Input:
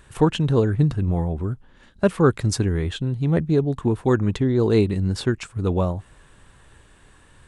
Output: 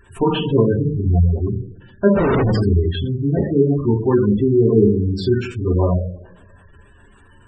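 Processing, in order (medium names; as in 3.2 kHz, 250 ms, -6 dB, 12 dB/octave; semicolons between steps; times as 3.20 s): two-slope reverb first 0.64 s, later 1.6 s, DRR -5.5 dB; 2.15–2.62 s: Schmitt trigger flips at -23.5 dBFS; spectral gate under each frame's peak -20 dB strong; trim -1.5 dB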